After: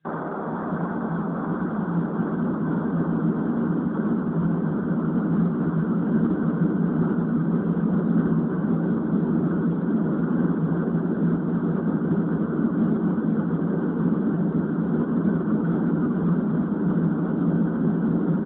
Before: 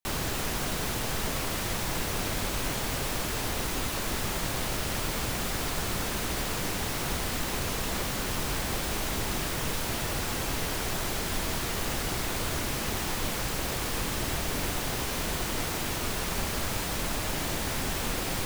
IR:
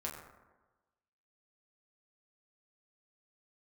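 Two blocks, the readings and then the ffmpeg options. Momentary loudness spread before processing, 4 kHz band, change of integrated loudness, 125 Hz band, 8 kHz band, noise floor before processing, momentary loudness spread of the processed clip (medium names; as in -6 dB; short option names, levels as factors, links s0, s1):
0 LU, under -25 dB, +6.5 dB, +10.5 dB, under -40 dB, -32 dBFS, 3 LU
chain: -filter_complex "[0:a]asplit=2[s0][s1];[s1]aecho=0:1:13|65:0.335|0.335[s2];[s0][s2]amix=inputs=2:normalize=0,asubboost=boost=9.5:cutoff=230,acompressor=threshold=0.2:ratio=3,afftfilt=real='re*between(b*sr/4096,160,1600)':imag='im*between(b*sr/4096,160,1600)':win_size=4096:overlap=0.75,volume=2.11" -ar 8000 -c:a libopencore_amrnb -b:a 10200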